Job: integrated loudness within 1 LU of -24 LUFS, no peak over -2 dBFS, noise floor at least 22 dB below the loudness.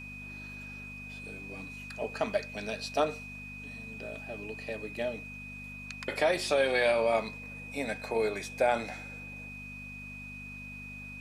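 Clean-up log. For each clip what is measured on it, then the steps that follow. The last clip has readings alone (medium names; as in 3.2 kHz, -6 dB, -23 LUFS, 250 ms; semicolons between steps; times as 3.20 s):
hum 50 Hz; highest harmonic 250 Hz; hum level -45 dBFS; steady tone 2.5 kHz; tone level -43 dBFS; loudness -34.0 LUFS; peak level -14.0 dBFS; loudness target -24.0 LUFS
-> de-hum 50 Hz, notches 5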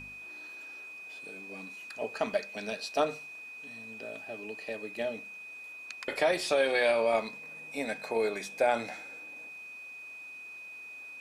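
hum not found; steady tone 2.5 kHz; tone level -43 dBFS
-> band-stop 2.5 kHz, Q 30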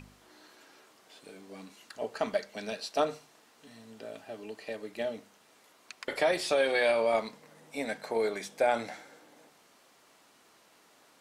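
steady tone not found; loudness -31.5 LUFS; peak level -14.0 dBFS; loudness target -24.0 LUFS
-> trim +7.5 dB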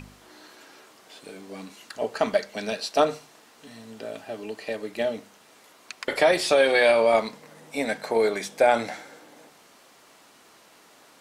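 loudness -24.0 LUFS; peak level -6.5 dBFS; noise floor -55 dBFS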